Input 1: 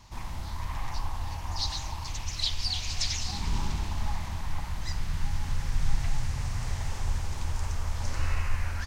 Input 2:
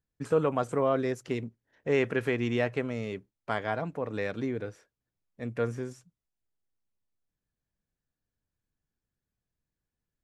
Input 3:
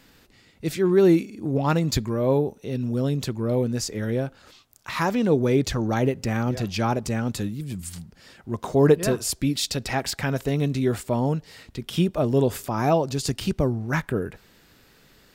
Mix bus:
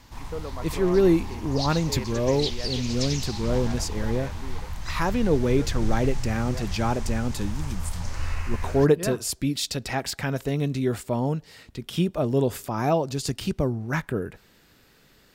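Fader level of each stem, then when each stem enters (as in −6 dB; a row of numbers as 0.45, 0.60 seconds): −0.5, −10.0, −2.0 decibels; 0.00, 0.00, 0.00 seconds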